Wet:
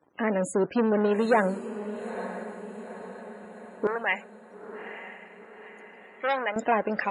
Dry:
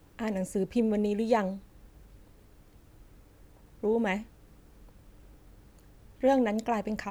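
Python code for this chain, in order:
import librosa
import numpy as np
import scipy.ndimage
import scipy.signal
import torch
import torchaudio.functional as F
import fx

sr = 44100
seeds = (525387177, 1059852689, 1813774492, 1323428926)

y = fx.leveller(x, sr, passes=3)
y = fx.dynamic_eq(y, sr, hz=1500.0, q=5.4, threshold_db=-48.0, ratio=4.0, max_db=7)
y = fx.spec_topn(y, sr, count=64)
y = fx.highpass(y, sr, hz=fx.steps((0.0, 260.0), (3.87, 870.0), (6.56, 330.0)), slope=12)
y = fx.echo_diffused(y, sr, ms=909, feedback_pct=52, wet_db=-11.5)
y = y * 10.0 ** (-1.5 / 20.0)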